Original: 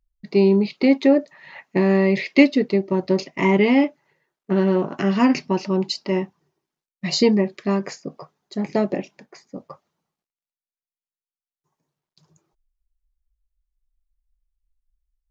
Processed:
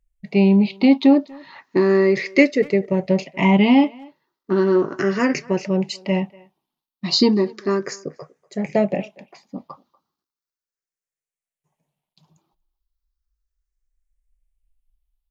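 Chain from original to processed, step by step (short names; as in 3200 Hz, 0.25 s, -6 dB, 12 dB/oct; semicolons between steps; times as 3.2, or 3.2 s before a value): moving spectral ripple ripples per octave 0.51, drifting +0.35 Hz, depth 11 dB; speakerphone echo 0.24 s, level -23 dB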